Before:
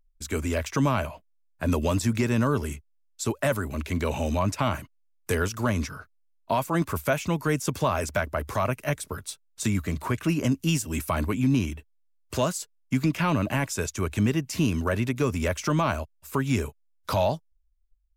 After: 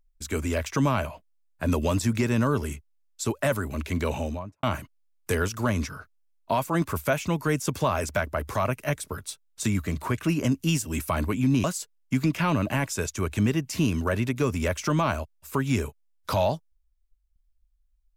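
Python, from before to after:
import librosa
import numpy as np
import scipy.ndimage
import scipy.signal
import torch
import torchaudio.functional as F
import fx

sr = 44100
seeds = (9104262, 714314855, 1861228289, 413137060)

y = fx.studio_fade_out(x, sr, start_s=4.06, length_s=0.57)
y = fx.edit(y, sr, fx.cut(start_s=11.64, length_s=0.8), tone=tone)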